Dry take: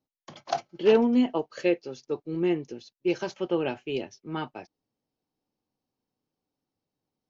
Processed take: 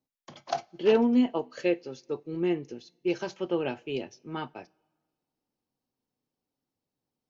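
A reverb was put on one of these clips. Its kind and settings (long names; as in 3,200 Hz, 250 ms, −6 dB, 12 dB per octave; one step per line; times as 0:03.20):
coupled-rooms reverb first 0.28 s, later 1.6 s, from −20 dB, DRR 17 dB
level −2 dB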